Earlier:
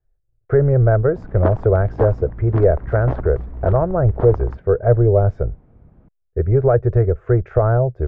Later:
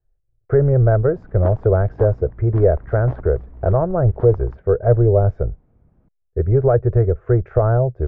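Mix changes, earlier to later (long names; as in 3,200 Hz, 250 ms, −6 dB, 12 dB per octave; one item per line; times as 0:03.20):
speech: add high-shelf EQ 2,800 Hz −11.5 dB
background −8.0 dB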